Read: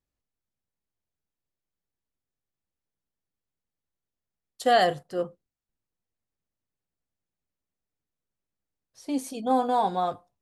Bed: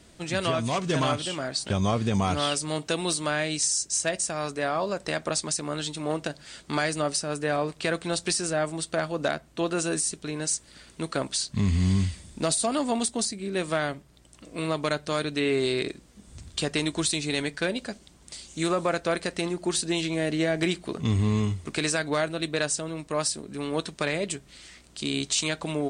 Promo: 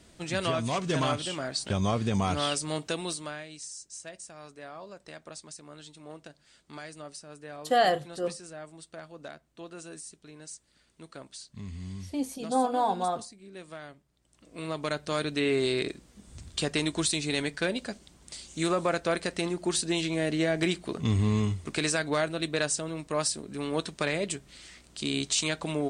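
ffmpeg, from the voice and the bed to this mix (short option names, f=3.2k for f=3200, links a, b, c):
-filter_complex "[0:a]adelay=3050,volume=-2.5dB[a];[1:a]volume=12.5dB,afade=t=out:st=2.75:d=0.71:silence=0.199526,afade=t=in:st=14.18:d=1.08:silence=0.177828[b];[a][b]amix=inputs=2:normalize=0"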